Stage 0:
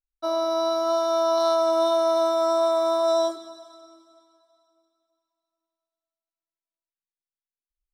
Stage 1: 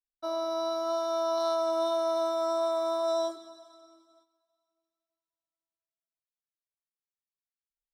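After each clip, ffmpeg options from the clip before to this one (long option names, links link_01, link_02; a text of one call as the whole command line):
ffmpeg -i in.wav -af "agate=range=-9dB:threshold=-57dB:ratio=16:detection=peak,volume=-7dB" out.wav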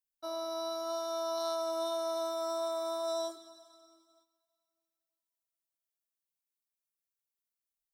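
ffmpeg -i in.wav -af "crystalizer=i=2:c=0,volume=-6.5dB" out.wav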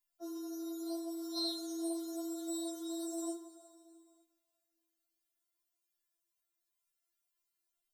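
ffmpeg -i in.wav -af "afftfilt=real='re*4*eq(mod(b,16),0)':imag='im*4*eq(mod(b,16),0)':win_size=2048:overlap=0.75,volume=6.5dB" out.wav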